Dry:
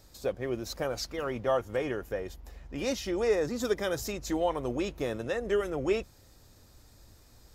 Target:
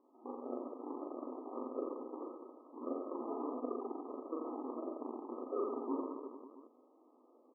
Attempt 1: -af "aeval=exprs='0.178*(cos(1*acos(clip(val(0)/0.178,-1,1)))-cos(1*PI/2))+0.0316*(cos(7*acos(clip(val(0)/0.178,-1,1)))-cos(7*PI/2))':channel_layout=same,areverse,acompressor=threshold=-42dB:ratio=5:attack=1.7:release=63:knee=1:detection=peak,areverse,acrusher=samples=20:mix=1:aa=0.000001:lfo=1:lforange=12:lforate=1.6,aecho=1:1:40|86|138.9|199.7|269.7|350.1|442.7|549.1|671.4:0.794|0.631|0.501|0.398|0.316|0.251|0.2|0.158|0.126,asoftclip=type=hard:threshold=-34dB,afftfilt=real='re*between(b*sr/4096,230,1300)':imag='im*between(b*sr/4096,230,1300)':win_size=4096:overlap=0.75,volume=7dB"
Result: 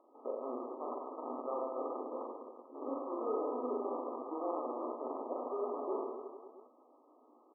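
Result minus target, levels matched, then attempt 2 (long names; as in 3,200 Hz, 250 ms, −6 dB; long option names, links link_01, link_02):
sample-and-hold swept by an LFO: distortion −19 dB
-af "aeval=exprs='0.178*(cos(1*acos(clip(val(0)/0.178,-1,1)))-cos(1*PI/2))+0.0316*(cos(7*acos(clip(val(0)/0.178,-1,1)))-cos(7*PI/2))':channel_layout=same,areverse,acompressor=threshold=-42dB:ratio=5:attack=1.7:release=63:knee=1:detection=peak,areverse,acrusher=samples=62:mix=1:aa=0.000001:lfo=1:lforange=37.2:lforate=1.6,aecho=1:1:40|86|138.9|199.7|269.7|350.1|442.7|549.1|671.4:0.794|0.631|0.501|0.398|0.316|0.251|0.2|0.158|0.126,asoftclip=type=hard:threshold=-34dB,afftfilt=real='re*between(b*sr/4096,230,1300)':imag='im*between(b*sr/4096,230,1300)':win_size=4096:overlap=0.75,volume=7dB"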